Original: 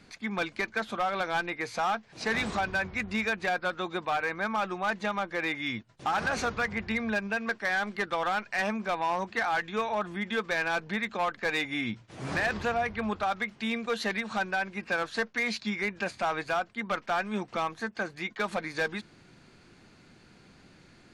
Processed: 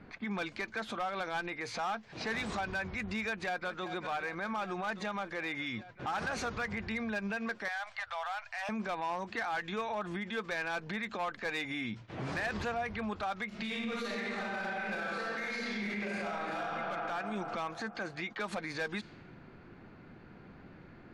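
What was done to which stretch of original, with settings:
3.22–3.92 echo throw 0.39 s, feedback 75%, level -15.5 dB
7.68–8.69 elliptic band-stop 100–670 Hz
13.48–16.6 reverb throw, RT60 2.4 s, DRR -9 dB
whole clip: low-pass opened by the level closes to 1500 Hz, open at -27.5 dBFS; compressor 3:1, threshold -34 dBFS; limiter -33 dBFS; gain +4 dB

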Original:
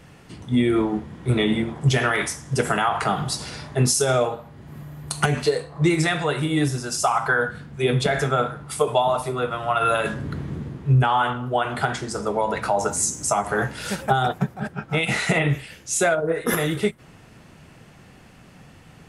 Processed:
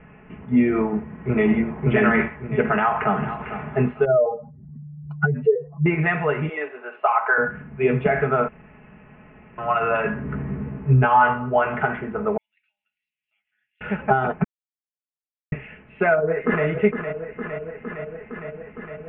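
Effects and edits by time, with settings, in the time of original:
0.88–1.71 echo throw 0.57 s, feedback 35%, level -2 dB
2.7–3.36 echo throw 0.45 s, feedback 25%, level -11.5 dB
4.05–5.86 spectral contrast raised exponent 2.5
6.49–7.38 HPF 440 Hz 24 dB/oct
8.48–9.58 room tone
10.27–11.77 doubler 15 ms -4 dB
12.37–13.81 inverse Chebyshev high-pass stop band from 1200 Hz, stop band 70 dB
14.44–15.52 mute
16.14–16.66 echo throw 0.46 s, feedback 80%, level -8 dB
whole clip: steep low-pass 2700 Hz 72 dB/oct; comb 4.7 ms, depth 59%

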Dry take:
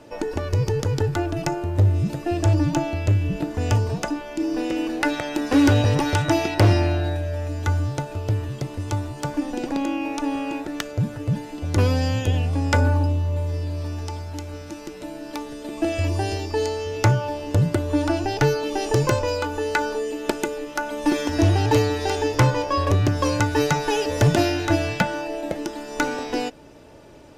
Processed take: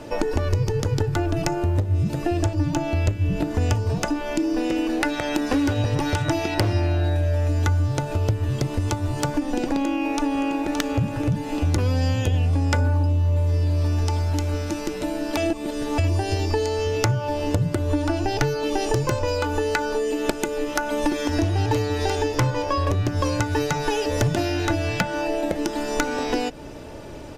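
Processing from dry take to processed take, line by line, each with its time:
9.81–10.73 echo throw 0.57 s, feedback 40%, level -7.5 dB
15.37–15.98 reverse
whole clip: compressor 6:1, threshold -29 dBFS; low shelf 91 Hz +7.5 dB; notches 50/100/150 Hz; gain +8 dB

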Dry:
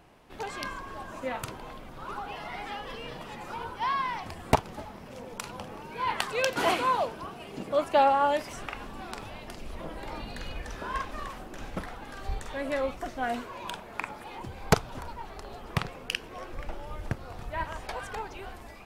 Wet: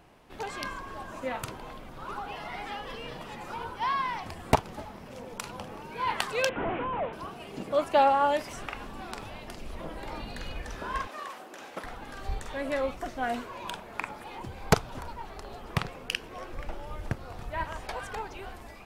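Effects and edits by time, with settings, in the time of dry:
6.49–7.13 delta modulation 16 kbps, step -39.5 dBFS
11.07–11.84 HPF 380 Hz

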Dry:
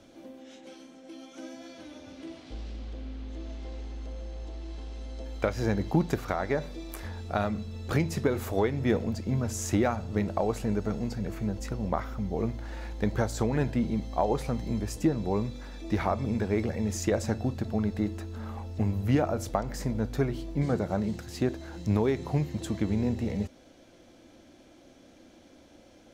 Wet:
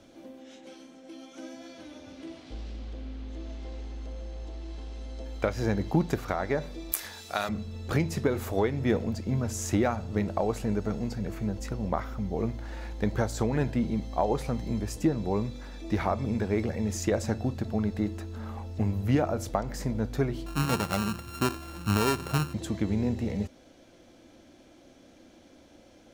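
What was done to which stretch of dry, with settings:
6.92–7.49 tilt +4.5 dB/oct
20.46–22.54 sample sorter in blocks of 32 samples

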